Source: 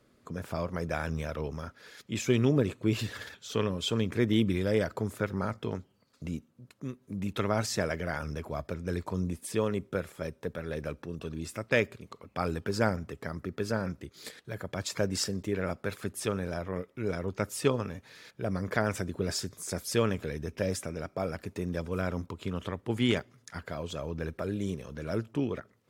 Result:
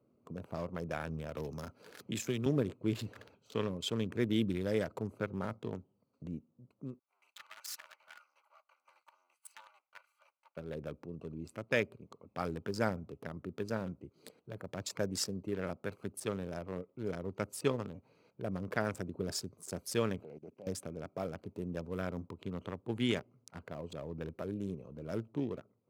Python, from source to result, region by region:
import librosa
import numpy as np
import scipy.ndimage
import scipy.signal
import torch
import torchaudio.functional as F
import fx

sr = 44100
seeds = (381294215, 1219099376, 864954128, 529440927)

y = fx.chain(x, sr, fx.high_shelf(hz=7900.0, db=8.5),
    fx.band_squash(depth_pct=70), at=(1.36, 2.46))
y = fx.chain(y, sr, fx.lower_of_two(delay_ms=3.4),
    fx.highpass(hz=1300.0, slope=24), at=(6.99, 10.57))
y = fx.chain(y, sr, fx.highpass(hz=180.0, slope=12),
    fx.level_steps(step_db=21),
    fx.doppler_dist(depth_ms=0.31), at=(20.23, 20.67))
y = fx.wiener(y, sr, points=25)
y = scipy.signal.sosfilt(scipy.signal.butter(2, 100.0, 'highpass', fs=sr, output='sos'), y)
y = fx.high_shelf(y, sr, hz=9500.0, db=7.5)
y = y * librosa.db_to_amplitude(-5.0)